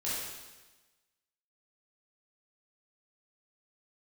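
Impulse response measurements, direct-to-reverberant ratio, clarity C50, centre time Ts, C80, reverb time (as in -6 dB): -9.5 dB, -2.5 dB, 96 ms, 1.0 dB, 1.2 s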